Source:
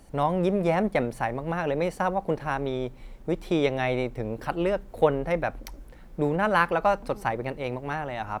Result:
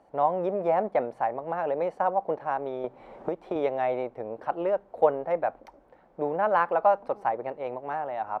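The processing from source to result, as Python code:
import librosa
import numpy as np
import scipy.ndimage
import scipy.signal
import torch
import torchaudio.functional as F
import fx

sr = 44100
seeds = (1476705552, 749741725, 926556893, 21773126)

y = fx.bandpass_q(x, sr, hz=720.0, q=1.6)
y = fx.band_squash(y, sr, depth_pct=100, at=(2.84, 3.56))
y = F.gain(torch.from_numpy(y), 3.0).numpy()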